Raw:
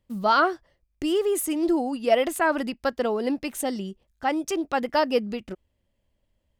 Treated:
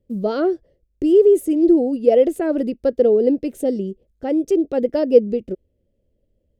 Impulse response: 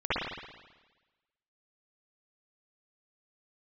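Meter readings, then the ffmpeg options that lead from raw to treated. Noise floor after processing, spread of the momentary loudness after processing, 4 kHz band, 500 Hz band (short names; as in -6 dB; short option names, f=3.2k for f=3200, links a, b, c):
-68 dBFS, 12 LU, n/a, +9.5 dB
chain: -af "lowshelf=f=690:t=q:w=3:g=13,volume=-8dB"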